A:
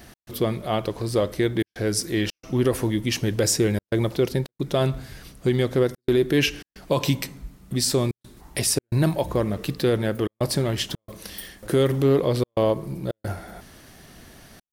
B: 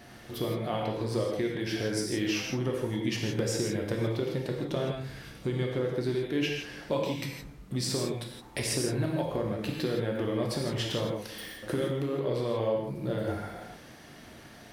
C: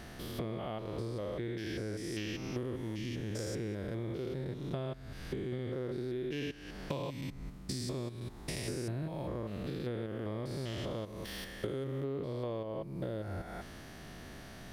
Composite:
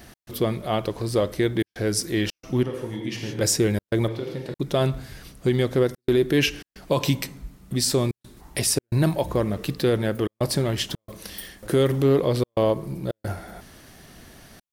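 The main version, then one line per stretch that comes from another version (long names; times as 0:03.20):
A
0:02.63–0:03.41: punch in from B
0:04.08–0:04.54: punch in from B
not used: C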